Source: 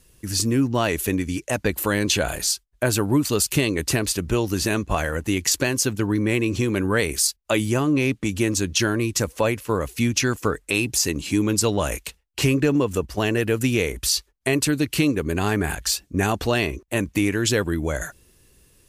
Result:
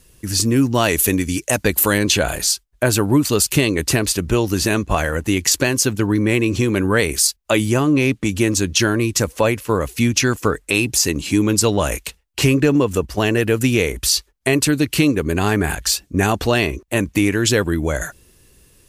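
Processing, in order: 0.56–1.98 s: treble shelf 4.7 kHz +8.5 dB; trim +4.5 dB

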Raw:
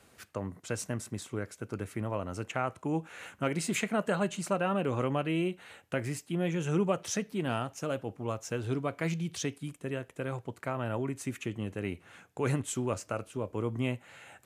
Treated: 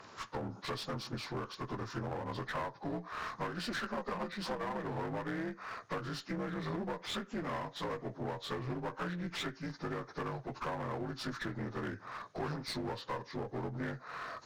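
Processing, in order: frequency axis rescaled in octaves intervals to 83%; peaking EQ 1.1 kHz +8.5 dB 1.6 oct; compression 5:1, threshold -39 dBFS, peak gain reduction 15.5 dB; one-sided clip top -47 dBFS; trim +5.5 dB

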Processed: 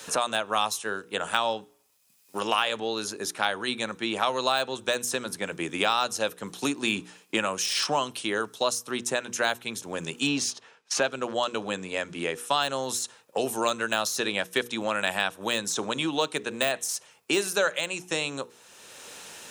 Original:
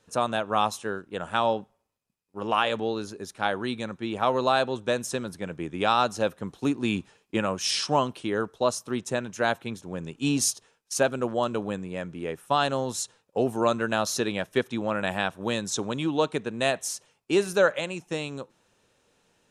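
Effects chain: 10.26–12.59 s: low-pass 3.9 kHz -> 9.9 kHz 12 dB/octave; de-esser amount 65%; tilt EQ +3 dB/octave; hum notches 60/120/180/240/300/360/420/480 Hz; three bands compressed up and down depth 70%

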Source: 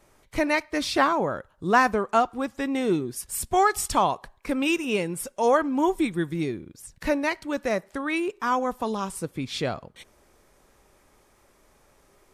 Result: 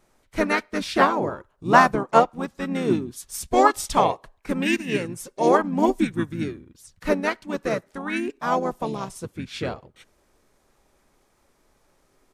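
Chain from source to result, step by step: harmony voices -7 st -5 dB, -5 st -15 dB, -4 st -9 dB; upward expansion 1.5:1, over -32 dBFS; trim +3.5 dB

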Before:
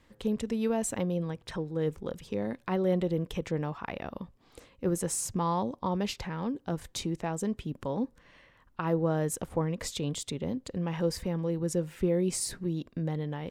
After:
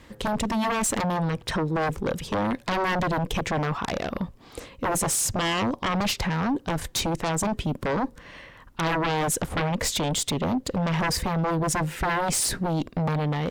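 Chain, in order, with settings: sine folder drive 15 dB, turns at -15.5 dBFS; Chebyshev shaper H 6 -37 dB, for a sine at -13 dBFS; trim -5.5 dB

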